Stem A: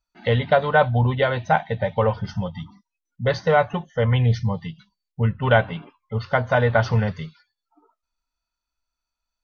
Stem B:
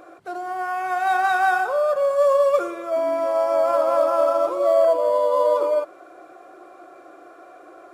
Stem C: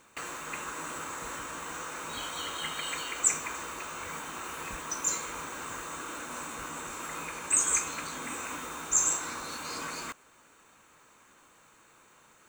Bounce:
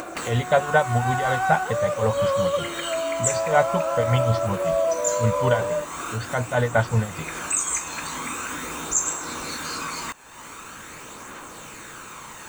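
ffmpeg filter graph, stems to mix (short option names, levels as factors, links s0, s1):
-filter_complex "[0:a]tremolo=f=5.3:d=0.75,volume=0.944[s0];[1:a]volume=0.531[s1];[2:a]aphaser=in_gain=1:out_gain=1:delay=1.2:decay=0.34:speed=0.44:type=triangular,volume=1.12[s2];[s0][s1][s2]amix=inputs=3:normalize=0,acompressor=mode=upward:threshold=0.0708:ratio=2.5"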